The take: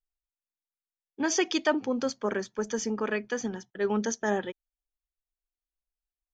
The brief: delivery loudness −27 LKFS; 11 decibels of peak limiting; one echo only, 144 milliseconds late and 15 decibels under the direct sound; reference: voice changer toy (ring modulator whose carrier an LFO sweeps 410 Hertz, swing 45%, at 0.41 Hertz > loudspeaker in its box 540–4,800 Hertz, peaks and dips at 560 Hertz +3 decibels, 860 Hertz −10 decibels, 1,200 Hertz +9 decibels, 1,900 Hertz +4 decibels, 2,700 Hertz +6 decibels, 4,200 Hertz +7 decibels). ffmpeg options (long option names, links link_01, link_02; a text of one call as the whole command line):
ffmpeg -i in.wav -af "alimiter=level_in=0.5dB:limit=-24dB:level=0:latency=1,volume=-0.5dB,aecho=1:1:144:0.178,aeval=exprs='val(0)*sin(2*PI*410*n/s+410*0.45/0.41*sin(2*PI*0.41*n/s))':channel_layout=same,highpass=540,equalizer=frequency=560:width_type=q:width=4:gain=3,equalizer=frequency=860:width_type=q:width=4:gain=-10,equalizer=frequency=1200:width_type=q:width=4:gain=9,equalizer=frequency=1900:width_type=q:width=4:gain=4,equalizer=frequency=2700:width_type=q:width=4:gain=6,equalizer=frequency=4200:width_type=q:width=4:gain=7,lowpass=frequency=4800:width=0.5412,lowpass=frequency=4800:width=1.3066,volume=11.5dB" out.wav